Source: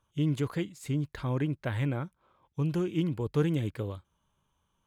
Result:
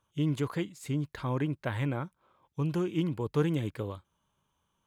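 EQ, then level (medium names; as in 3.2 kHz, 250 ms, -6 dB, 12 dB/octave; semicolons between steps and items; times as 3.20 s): dynamic bell 1 kHz, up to +4 dB, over -50 dBFS, Q 2.2; bass shelf 62 Hz -10 dB; 0.0 dB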